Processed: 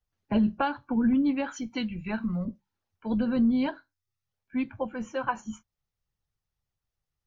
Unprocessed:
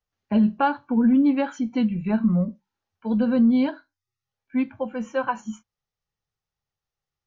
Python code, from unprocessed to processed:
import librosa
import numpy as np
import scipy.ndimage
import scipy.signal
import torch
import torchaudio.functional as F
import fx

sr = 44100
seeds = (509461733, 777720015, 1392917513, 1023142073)

y = fx.tilt_shelf(x, sr, db=-5.5, hz=1200.0, at=(1.56, 2.45))
y = fx.hpss(y, sr, part='percussive', gain_db=9)
y = fx.low_shelf(y, sr, hz=140.0, db=11.5)
y = y * librosa.db_to_amplitude(-8.5)